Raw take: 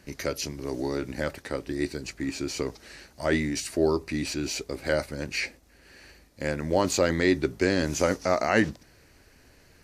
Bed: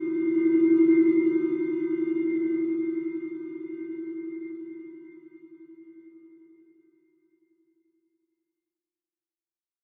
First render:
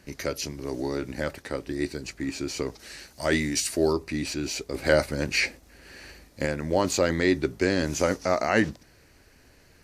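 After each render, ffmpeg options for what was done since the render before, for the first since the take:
-filter_complex "[0:a]asettb=1/sr,asplit=3[a][b][c];[a]atrim=end=2.794[d];[b]atrim=start=2.79:end=3.93,asetpts=PTS-STARTPTS,afade=t=in:d=0.004:c=qsin,afade=t=out:st=1.136:d=0.004:c=qsin,highshelf=f=3k:g=8[e];[c]atrim=start=3.926[f];[d][e]acrossfade=d=0.004:c1=hsin:c2=qsin[g];[g][f]acrossfade=d=0.004:c1=qsin:c2=hsin,asettb=1/sr,asplit=3[h][i][j];[h]atrim=end=4.744[k];[i]atrim=start=4.74:end=6.46,asetpts=PTS-STARTPTS,afade=t=in:d=0.004:c=qsin,afade=t=out:st=1.716:d=0.004:c=qsin,acontrast=35[l];[j]atrim=start=6.456[m];[k][l]acrossfade=d=0.004:c1=hsin:c2=qsin[n];[n][m]acrossfade=d=0.004:c1=qsin:c2=hsin"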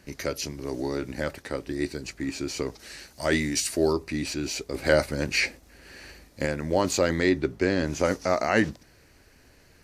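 -filter_complex "[0:a]asettb=1/sr,asplit=3[a][b][c];[a]atrim=end=7.294[d];[b]atrim=start=7.29:end=8.05,asetpts=PTS-STARTPTS,afade=t=in:d=0.004:c=qsin,afade=t=out:st=0.756:d=0.004:c=qsin,highshelf=f=5.2k:g=-9.5[e];[c]atrim=start=8.046[f];[d][e]acrossfade=d=0.004:c1=hsin:c2=qsin[g];[g][f]acrossfade=d=0.004:c1=qsin:c2=hsin"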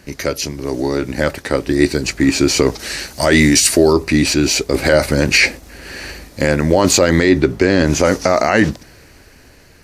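-af "dynaudnorm=f=480:g=7:m=11.5dB,alimiter=level_in=10dB:limit=-1dB:release=50:level=0:latency=1"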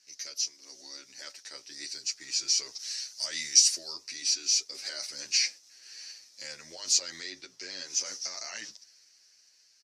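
-filter_complex "[0:a]bandpass=f=5.5k:t=q:w=4.4:csg=0,asplit=2[a][b];[b]adelay=8.9,afreqshift=0.28[c];[a][c]amix=inputs=2:normalize=1"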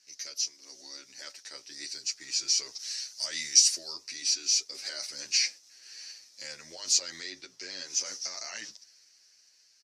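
-af anull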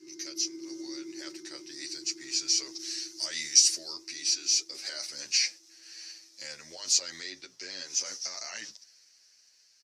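-filter_complex "[1:a]volume=-22dB[a];[0:a][a]amix=inputs=2:normalize=0"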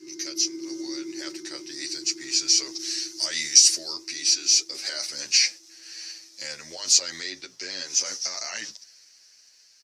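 -af "volume=6.5dB,alimiter=limit=-2dB:level=0:latency=1"

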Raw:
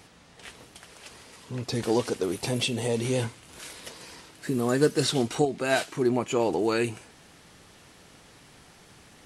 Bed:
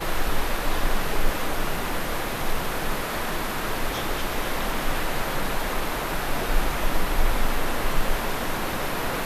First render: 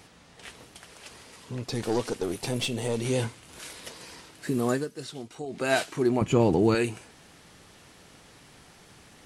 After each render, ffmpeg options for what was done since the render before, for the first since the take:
-filter_complex "[0:a]asettb=1/sr,asplit=3[a][b][c];[a]atrim=end=1.544[d];[b]atrim=start=1.54:end=3.06,asetpts=PTS-STARTPTS,afade=t=in:d=0.004:c=qsin,afade=t=out:st=1.516:d=0.004:c=qsin,aeval=exprs='(tanh(8.91*val(0)+0.45)-tanh(0.45))/8.91':c=same[e];[c]atrim=start=3.056[f];[d][e]acrossfade=d=0.004:c1=hsin:c2=qsin[g];[g][f]acrossfade=d=0.004:c1=qsin:c2=hsin,asettb=1/sr,asplit=3[h][i][j];[h]atrim=end=6.214[k];[i]atrim=start=6.21:end=6.75,asetpts=PTS-STARTPTS,afade=t=in:d=0.004:c=qsin,afade=t=out:st=0.536:d=0.004:c=qsin,bass=f=250:g=15,treble=f=4k:g=-3[l];[j]atrim=start=6.746[m];[k][l]acrossfade=d=0.004:c1=hsin:c2=qsin[n];[n][m]acrossfade=d=0.004:c1=qsin:c2=hsin,asplit=3[o][p][q];[o]atrim=end=4.85,asetpts=PTS-STARTPTS,afade=t=out:st=4.71:d=0.14:silence=0.199526[r];[p]atrim=start=4.85:end=5.44,asetpts=PTS-STARTPTS,volume=-14dB[s];[q]atrim=start=5.44,asetpts=PTS-STARTPTS,afade=t=in:d=0.14:silence=0.199526[t];[r][s][t]concat=n=3:v=0:a=1"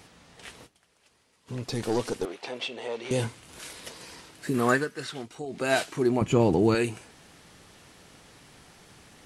-filter_complex "[0:a]asettb=1/sr,asplit=3[a][b][c];[a]atrim=end=2.254[d];[b]atrim=start=2.25:end=3.11,asetpts=PTS-STARTPTS,afade=t=in:d=0.004:c=qsin,afade=t=out:st=0.856:d=0.004:c=qsin,highpass=500,lowpass=3.5k[e];[c]atrim=start=3.106[f];[d][e]acrossfade=d=0.004:c1=hsin:c2=qsin[g];[g][f]acrossfade=d=0.004:c1=qsin:c2=hsin,asettb=1/sr,asplit=3[h][i][j];[h]atrim=end=4.544[k];[i]atrim=start=4.54:end=5.26,asetpts=PTS-STARTPTS,afade=t=in:d=0.004:c=qsin,afade=t=out:st=0.716:d=0.004:c=qsin,equalizer=f=1.6k:w=0.83:g=12[l];[j]atrim=start=5.256[m];[k][l]acrossfade=d=0.004:c1=hsin:c2=qsin[n];[n][m]acrossfade=d=0.004:c1=qsin:c2=hsin,asplit=3[o][p][q];[o]atrim=end=0.8,asetpts=PTS-STARTPTS,afade=t=out:st=0.66:d=0.14:c=exp:silence=0.133352[r];[p]atrim=start=0.8:end=1.35,asetpts=PTS-STARTPTS,volume=-17.5dB[s];[q]atrim=start=1.35,asetpts=PTS-STARTPTS,afade=t=in:d=0.14:c=exp:silence=0.133352[t];[r][s][t]concat=n=3:v=0:a=1"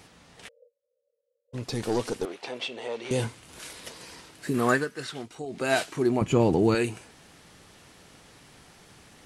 -filter_complex "[0:a]asplit=3[a][b][c];[a]afade=t=out:st=0.47:d=0.02[d];[b]asuperpass=centerf=520:order=20:qfactor=3.8,afade=t=in:st=0.47:d=0.02,afade=t=out:st=1.53:d=0.02[e];[c]afade=t=in:st=1.53:d=0.02[f];[d][e][f]amix=inputs=3:normalize=0"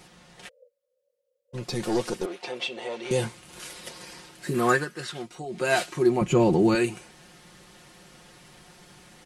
-af "aecho=1:1:5.6:0.67"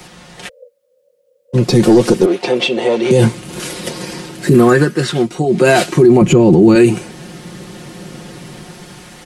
-filter_complex "[0:a]acrossover=split=100|460|5400[a][b][c][d];[b]dynaudnorm=f=140:g=11:m=10.5dB[e];[a][e][c][d]amix=inputs=4:normalize=0,alimiter=level_in=14dB:limit=-1dB:release=50:level=0:latency=1"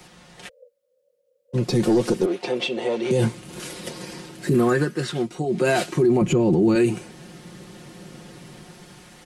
-af "volume=-10dB"

